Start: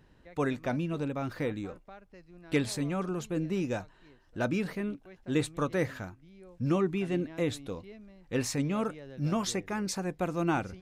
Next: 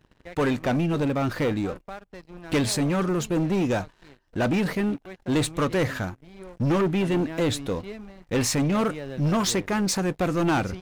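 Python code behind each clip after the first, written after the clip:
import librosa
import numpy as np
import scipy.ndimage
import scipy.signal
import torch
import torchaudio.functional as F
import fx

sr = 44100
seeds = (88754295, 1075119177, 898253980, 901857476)

y = fx.leveller(x, sr, passes=3)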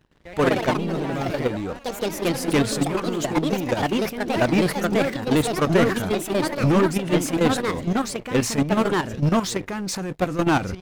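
y = fx.level_steps(x, sr, step_db=11)
y = fx.echo_pitch(y, sr, ms=116, semitones=3, count=3, db_per_echo=-3.0)
y = F.gain(torch.from_numpy(y), 5.0).numpy()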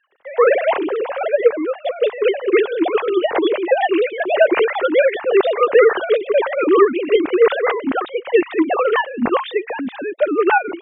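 y = fx.sine_speech(x, sr)
y = F.gain(torch.from_numpy(y), 5.5).numpy()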